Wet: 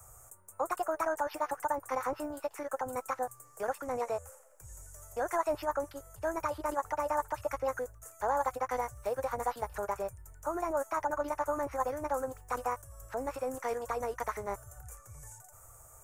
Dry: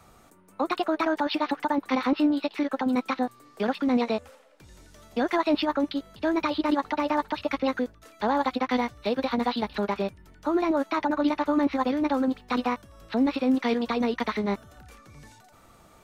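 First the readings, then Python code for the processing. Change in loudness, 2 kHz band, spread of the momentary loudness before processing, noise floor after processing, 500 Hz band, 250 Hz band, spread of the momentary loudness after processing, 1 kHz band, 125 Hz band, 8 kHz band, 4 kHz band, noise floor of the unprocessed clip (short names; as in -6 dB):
-8.5 dB, -8.5 dB, 7 LU, -57 dBFS, -5.0 dB, -20.0 dB, 17 LU, -4.5 dB, -5.5 dB, n/a, -20.0 dB, -56 dBFS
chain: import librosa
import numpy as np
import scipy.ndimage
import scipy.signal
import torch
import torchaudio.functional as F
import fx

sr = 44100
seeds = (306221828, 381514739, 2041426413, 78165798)

y = fx.curve_eq(x, sr, hz=(120.0, 220.0, 520.0, 1500.0, 4000.0, 7000.0), db=(0, -29, -6, -7, -28, 9))
y = y * 10.0 ** (2.0 / 20.0)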